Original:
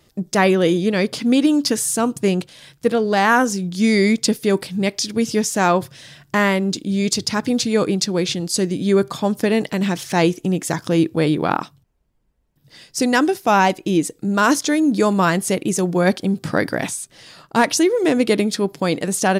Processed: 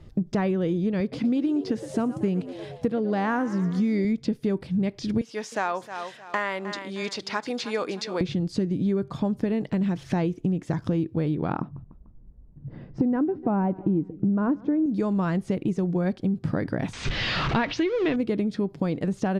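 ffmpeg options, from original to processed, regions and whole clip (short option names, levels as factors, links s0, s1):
-filter_complex "[0:a]asettb=1/sr,asplit=3[s0][s1][s2];[s0]atrim=end=1.004[s3];[s1]atrim=start=1:end=4.05,asetpts=PTS-STARTPTS,afade=t=in:d=0.004:c=qsin,afade=t=out:st=3.046:d=0.004:c=qsin,highpass=86,asplit=6[s4][s5][s6][s7][s8][s9];[s5]adelay=117,afreqshift=78,volume=0.168[s10];[s6]adelay=234,afreqshift=156,volume=0.0902[s11];[s7]adelay=351,afreqshift=234,volume=0.049[s12];[s8]adelay=468,afreqshift=312,volume=0.0263[s13];[s9]adelay=585,afreqshift=390,volume=0.0143[s14];[s4][s10][s11][s12][s13][s14]amix=inputs=6:normalize=0,atrim=end_sample=134505[s15];[s2]atrim=start=4.046[s16];[s3][s15]acrossfade=d=0.004:c1=hsin:c2=qsin[s17];[s17][s16]acrossfade=d=0.004:c1=qsin:c2=hsin,asettb=1/sr,asplit=3[s18][s19][s20];[s18]atrim=end=5.214[s21];[s19]atrim=start=5.21:end=8.21,asetpts=PTS-STARTPTS,afade=t=in:d=0.004:c=qsin,afade=t=out:st=2.996:d=0.004:c=qsin,highpass=760,aecho=1:1:310|620|930:0.168|0.0571|0.0194,atrim=end_sample=132300[s22];[s20]atrim=start=8.206[s23];[s21][s22]acrossfade=d=0.004:c1=hsin:c2=qsin[s24];[s24][s23]acrossfade=d=0.004:c1=qsin:c2=hsin,asettb=1/sr,asplit=3[s25][s26][s27];[s25]atrim=end=11.614[s28];[s26]atrim=start=11.61:end=14.86,asetpts=PTS-STARTPTS,afade=t=in:d=0.004:c=qsin,afade=t=out:st=3.246:d=0.004:c=qsin,lowpass=1200,equalizer=f=200:t=o:w=2.6:g=6.5,aecho=1:1:148|296|444:0.0631|0.0303|0.0145,atrim=end_sample=143325[s29];[s27]atrim=start=14.856[s30];[s28][s29]acrossfade=d=0.004:c1=hsin:c2=qsin[s31];[s31][s30]acrossfade=d=0.004:c1=qsin:c2=hsin,asettb=1/sr,asplit=3[s32][s33][s34];[s32]atrim=end=16.934[s35];[s33]atrim=start=16.93:end=18.16,asetpts=PTS-STARTPTS,afade=t=in:d=0.004:c=qsin,afade=t=out:st=1.226:d=0.004:c=qsin,aeval=exprs='val(0)+0.5*0.0531*sgn(val(0))':c=same,lowpass=f=6300:w=0.5412,lowpass=f=6300:w=1.3066,equalizer=f=2900:t=o:w=2.5:g=13[s36];[s34]atrim=start=18.156[s37];[s35][s36]acrossfade=d=0.004:c1=hsin:c2=qsin[s38];[s38][s37]acrossfade=d=0.004:c1=qsin:c2=hsin,acrossover=split=4800[s39][s40];[s40]acompressor=threshold=0.0251:ratio=4:attack=1:release=60[s41];[s39][s41]amix=inputs=2:normalize=0,aemphasis=mode=reproduction:type=riaa,acompressor=threshold=0.0708:ratio=6"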